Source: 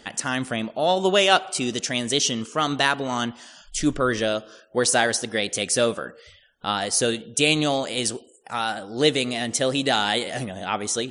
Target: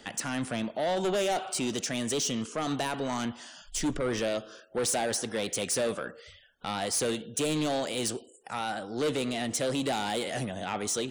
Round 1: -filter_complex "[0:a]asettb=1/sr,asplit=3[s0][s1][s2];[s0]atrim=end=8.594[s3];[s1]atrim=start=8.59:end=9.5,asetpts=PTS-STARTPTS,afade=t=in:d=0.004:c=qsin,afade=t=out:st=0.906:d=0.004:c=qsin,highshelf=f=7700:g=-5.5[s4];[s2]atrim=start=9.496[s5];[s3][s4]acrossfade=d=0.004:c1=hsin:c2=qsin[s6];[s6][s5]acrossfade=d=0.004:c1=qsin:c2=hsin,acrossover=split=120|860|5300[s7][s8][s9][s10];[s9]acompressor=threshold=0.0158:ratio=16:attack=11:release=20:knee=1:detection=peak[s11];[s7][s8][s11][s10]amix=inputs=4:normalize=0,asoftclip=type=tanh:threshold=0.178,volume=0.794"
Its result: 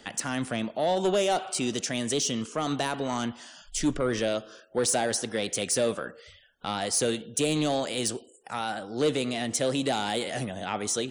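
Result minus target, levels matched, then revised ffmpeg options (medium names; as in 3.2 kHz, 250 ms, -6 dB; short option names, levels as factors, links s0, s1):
saturation: distortion -8 dB
-filter_complex "[0:a]asettb=1/sr,asplit=3[s0][s1][s2];[s0]atrim=end=8.594[s3];[s1]atrim=start=8.59:end=9.5,asetpts=PTS-STARTPTS,afade=t=in:d=0.004:c=qsin,afade=t=out:st=0.906:d=0.004:c=qsin,highshelf=f=7700:g=-5.5[s4];[s2]atrim=start=9.496[s5];[s3][s4]acrossfade=d=0.004:c1=hsin:c2=qsin[s6];[s6][s5]acrossfade=d=0.004:c1=qsin:c2=hsin,acrossover=split=120|860|5300[s7][s8][s9][s10];[s9]acompressor=threshold=0.0158:ratio=16:attack=11:release=20:knee=1:detection=peak[s11];[s7][s8][s11][s10]amix=inputs=4:normalize=0,asoftclip=type=tanh:threshold=0.0794,volume=0.794"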